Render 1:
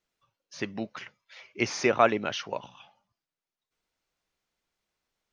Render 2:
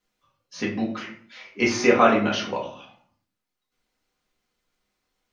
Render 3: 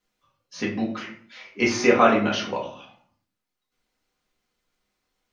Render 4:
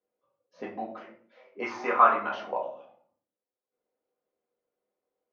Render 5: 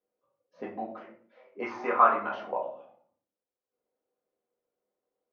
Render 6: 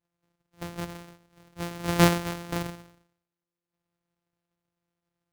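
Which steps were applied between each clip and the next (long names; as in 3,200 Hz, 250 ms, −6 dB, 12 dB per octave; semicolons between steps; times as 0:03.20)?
convolution reverb RT60 0.55 s, pre-delay 4 ms, DRR −4.5 dB
no processing that can be heard
envelope filter 500–1,100 Hz, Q 3.2, up, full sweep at −17 dBFS; level +3.5 dB
high-shelf EQ 3,000 Hz −10.5 dB
samples sorted by size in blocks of 256 samples; level +1 dB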